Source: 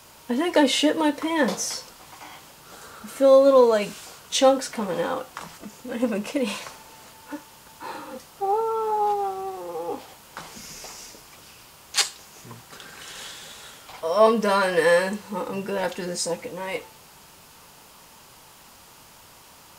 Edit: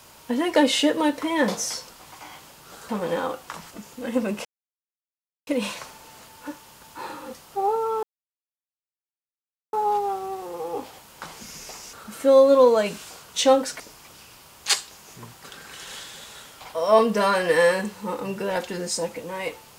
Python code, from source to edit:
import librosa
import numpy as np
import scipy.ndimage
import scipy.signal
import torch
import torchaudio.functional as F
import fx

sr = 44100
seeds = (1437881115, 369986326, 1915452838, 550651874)

y = fx.edit(x, sr, fx.move(start_s=2.89, length_s=1.87, to_s=11.08),
    fx.insert_silence(at_s=6.32, length_s=1.02),
    fx.insert_silence(at_s=8.88, length_s=1.7), tone=tone)